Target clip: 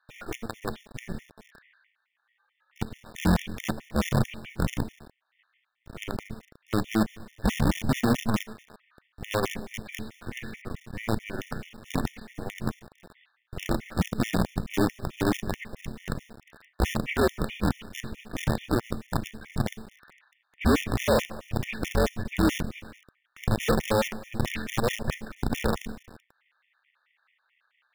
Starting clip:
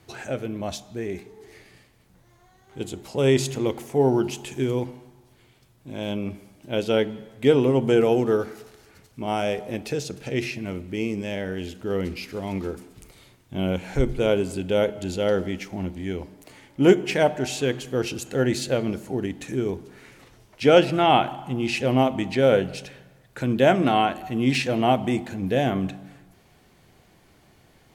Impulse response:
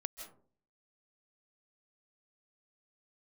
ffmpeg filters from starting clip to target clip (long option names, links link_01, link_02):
-filter_complex "[0:a]aeval=exprs='if(lt(val(0),0),0.251*val(0),val(0))':channel_layout=same,lowpass=frequency=2900:width=0.5412,lowpass=frequency=2900:width=1.3066,aresample=11025,asoftclip=type=tanh:threshold=-18dB,aresample=44100,afreqshift=-220,acrossover=split=1200[link_01][link_02];[link_01]acrusher=bits=5:dc=4:mix=0:aa=0.000001[link_03];[link_03][link_02]amix=inputs=2:normalize=0,afftfilt=real='re*gt(sin(2*PI*4.6*pts/sr)*(1-2*mod(floor(b*sr/1024/1800),2)),0)':imag='im*gt(sin(2*PI*4.6*pts/sr)*(1-2*mod(floor(b*sr/1024/1800),2)),0)':win_size=1024:overlap=0.75,volume=3.5dB"